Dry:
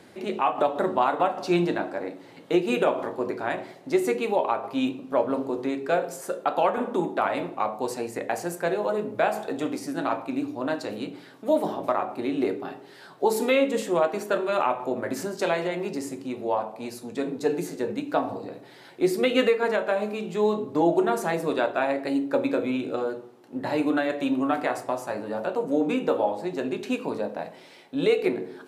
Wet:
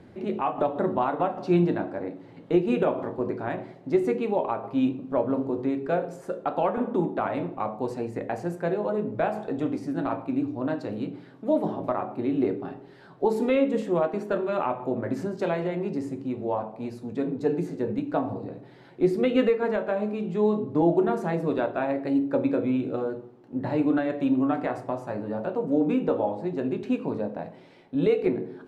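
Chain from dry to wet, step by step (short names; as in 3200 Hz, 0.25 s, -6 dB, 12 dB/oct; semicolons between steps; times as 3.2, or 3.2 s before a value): RIAA curve playback; gain -4 dB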